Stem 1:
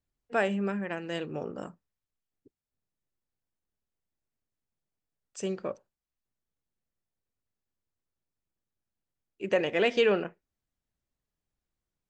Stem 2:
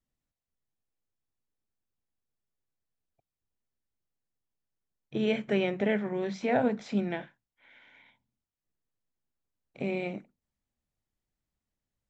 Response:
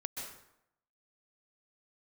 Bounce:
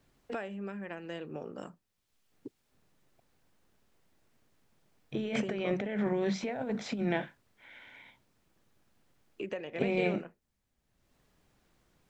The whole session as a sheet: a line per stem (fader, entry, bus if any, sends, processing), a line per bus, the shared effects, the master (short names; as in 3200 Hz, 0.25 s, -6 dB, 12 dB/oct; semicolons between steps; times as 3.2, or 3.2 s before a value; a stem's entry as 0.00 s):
-8.5 dB, 0.00 s, no send, high shelf 4900 Hz -9.5 dB; three-band squash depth 100%
+1.0 dB, 0.00 s, no send, negative-ratio compressor -33 dBFS, ratio -1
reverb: off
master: dry